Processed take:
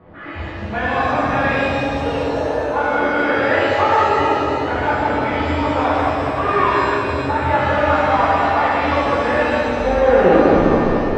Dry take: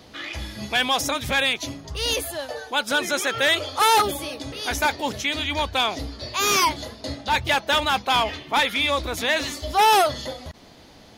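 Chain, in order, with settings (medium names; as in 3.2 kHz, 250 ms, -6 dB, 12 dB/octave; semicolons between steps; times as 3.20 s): tape stop on the ending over 1.92 s; low-pass 1.7 kHz 24 dB/octave; compression, threshold -21 dBFS, peak gain reduction 6.5 dB; bucket-brigade echo 205 ms, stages 1024, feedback 64%, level -3 dB; pitch-shifted reverb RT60 2.1 s, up +7 st, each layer -8 dB, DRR -10.5 dB; trim -2 dB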